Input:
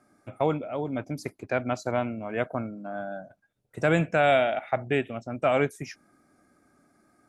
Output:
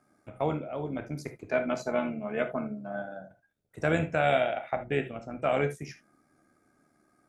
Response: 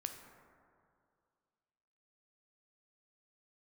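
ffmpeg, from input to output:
-filter_complex "[0:a]asettb=1/sr,asplit=3[a][b][c];[a]atrim=end=1.494[d];[b]atrim=start=1.49:end=3.02,asetpts=PTS-STARTPTS,afade=t=in:d=0.004:c=qsin,afade=t=out:st=1.526:d=0.004:c=qsin,aecho=1:1:4.7:0.79,atrim=end_sample=67473[e];[c]atrim=start=3.016[f];[d][e]acrossfade=d=0.004:c1=hsin:c2=qsin[g];[g][f]acrossfade=d=0.004:c1=qsin:c2=hsin,tremolo=f=74:d=0.519[h];[1:a]atrim=start_sample=2205,afade=t=out:st=0.16:d=0.01,atrim=end_sample=7497,asetrate=57330,aresample=44100[i];[h][i]afir=irnorm=-1:irlink=0,volume=3dB"

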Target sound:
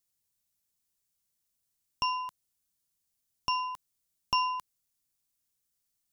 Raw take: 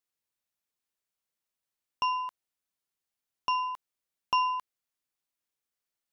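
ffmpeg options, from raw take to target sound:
-af "bass=f=250:g=13,treble=f=4k:g=12,volume=-2.5dB"

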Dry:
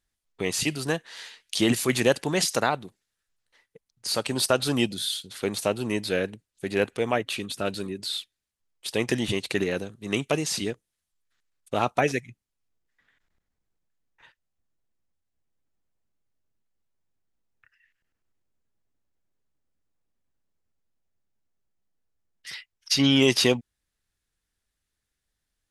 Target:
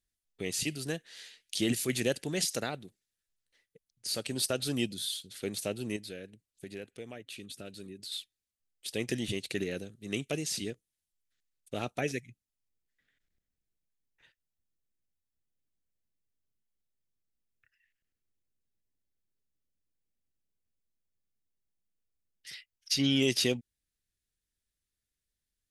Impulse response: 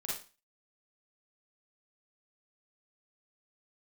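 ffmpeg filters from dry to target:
-filter_complex "[0:a]highshelf=f=8.8k:g=4,asettb=1/sr,asplit=3[a][b][c];[a]atrim=end=5.964[d];[b]atrim=start=5.96:end=8.12,asetpts=PTS-STARTPTS,afade=t=in:d=0.004:c=qsin,afade=t=out:st=2.156:d=0.004:c=qsin,acompressor=threshold=-36dB:ratio=2.5[e];[c]atrim=start=8.116[f];[d][e]acrossfade=d=0.004:c1=hsin:c2=qsin[g];[g][f]acrossfade=d=0.004:c1=qsin:c2=hsin,equalizer=f=1k:w=1.5:g=-13.5,volume=-6.5dB"

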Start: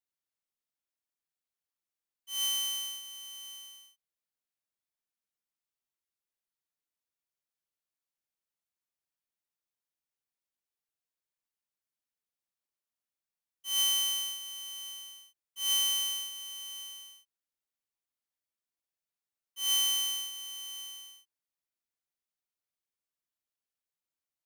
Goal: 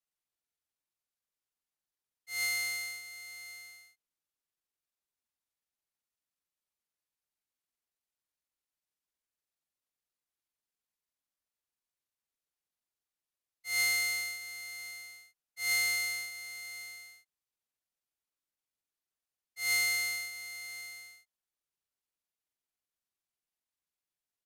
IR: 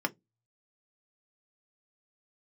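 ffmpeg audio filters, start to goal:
-af "asetrate=31183,aresample=44100,atempo=1.41421,afreqshift=-79,volume=-1.5dB"

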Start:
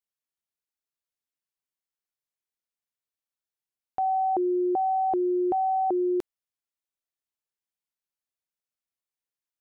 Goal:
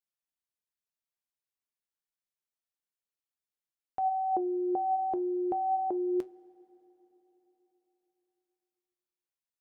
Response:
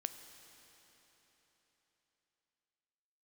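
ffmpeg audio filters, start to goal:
-filter_complex "[0:a]flanger=delay=5.1:depth=7.9:regen=71:speed=0.29:shape=triangular,asplit=2[a][b];[1:a]atrim=start_sample=2205[c];[b][c]afir=irnorm=-1:irlink=0,volume=-9.5dB[d];[a][d]amix=inputs=2:normalize=0,volume=-2.5dB"

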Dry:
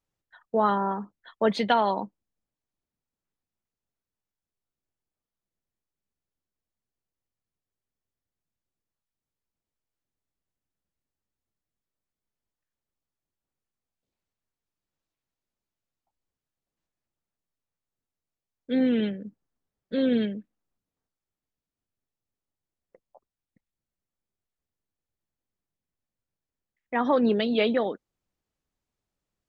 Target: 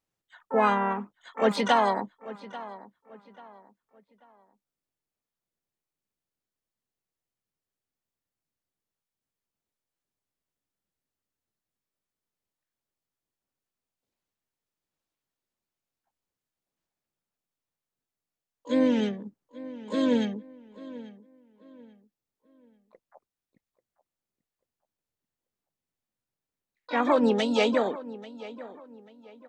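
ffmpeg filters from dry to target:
-filter_complex "[0:a]lowshelf=f=72:g=-11,asplit=3[a][b][c];[b]asetrate=52444,aresample=44100,atempo=0.840896,volume=-10dB[d];[c]asetrate=88200,aresample=44100,atempo=0.5,volume=-12dB[e];[a][d][e]amix=inputs=3:normalize=0,asplit=2[f][g];[g]adelay=839,lowpass=f=3k:p=1,volume=-17dB,asplit=2[h][i];[i]adelay=839,lowpass=f=3k:p=1,volume=0.33,asplit=2[j][k];[k]adelay=839,lowpass=f=3k:p=1,volume=0.33[l];[f][h][j][l]amix=inputs=4:normalize=0"

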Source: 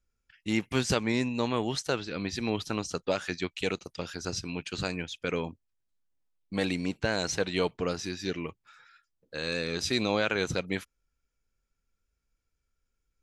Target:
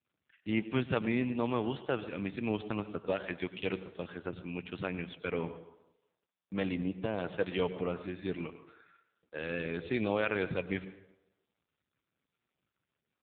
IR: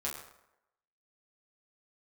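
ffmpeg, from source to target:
-filter_complex "[0:a]asplit=3[a][b][c];[a]afade=t=out:st=6.75:d=0.02[d];[b]equalizer=f=1.7k:w=1.3:g=-11.5,afade=t=in:st=6.75:d=0.02,afade=t=out:st=7.17:d=0.02[e];[c]afade=t=in:st=7.17:d=0.02[f];[d][e][f]amix=inputs=3:normalize=0,asplit=2[g][h];[1:a]atrim=start_sample=2205,asetrate=37926,aresample=44100,adelay=96[i];[h][i]afir=irnorm=-1:irlink=0,volume=-15dB[j];[g][j]amix=inputs=2:normalize=0,volume=-2.5dB" -ar 8000 -c:a libopencore_amrnb -b:a 5900

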